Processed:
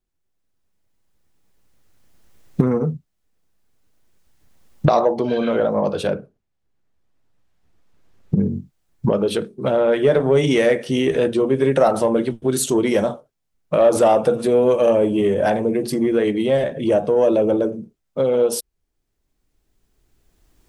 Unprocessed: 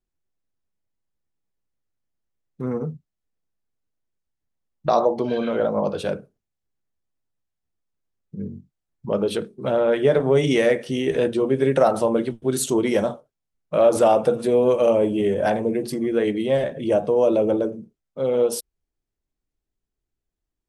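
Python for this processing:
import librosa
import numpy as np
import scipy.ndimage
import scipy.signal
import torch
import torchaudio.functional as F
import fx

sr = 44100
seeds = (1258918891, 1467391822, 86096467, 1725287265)

p1 = fx.recorder_agc(x, sr, target_db=-12.5, rise_db_per_s=11.0, max_gain_db=30)
p2 = fx.lowpass(p1, sr, hz=2800.0, slope=6, at=(6.07, 8.37))
p3 = 10.0 ** (-12.0 / 20.0) * np.tanh(p2 / 10.0 ** (-12.0 / 20.0))
p4 = p2 + F.gain(torch.from_numpy(p3), -4.0).numpy()
y = F.gain(torch.from_numpy(p4), -1.5).numpy()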